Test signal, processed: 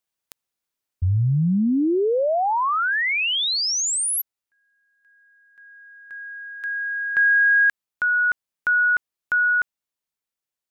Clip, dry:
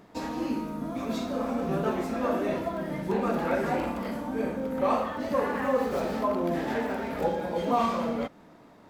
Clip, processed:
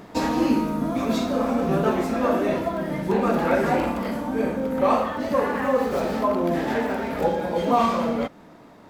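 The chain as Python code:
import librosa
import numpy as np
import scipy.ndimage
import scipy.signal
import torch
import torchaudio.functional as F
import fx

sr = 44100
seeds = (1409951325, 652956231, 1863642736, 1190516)

y = fx.rider(x, sr, range_db=10, speed_s=2.0)
y = y * librosa.db_to_amplitude(5.5)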